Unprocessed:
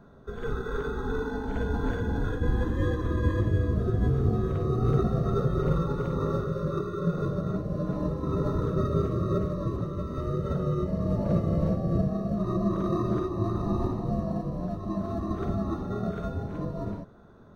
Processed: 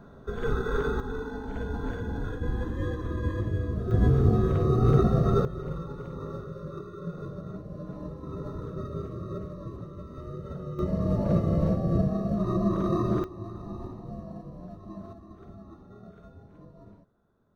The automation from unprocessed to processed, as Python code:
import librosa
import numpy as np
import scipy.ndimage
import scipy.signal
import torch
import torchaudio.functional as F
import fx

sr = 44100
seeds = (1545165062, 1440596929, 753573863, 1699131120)

y = fx.gain(x, sr, db=fx.steps((0.0, 3.5), (1.0, -4.0), (3.91, 3.5), (5.45, -9.0), (10.79, 1.0), (13.24, -10.5), (15.13, -17.5)))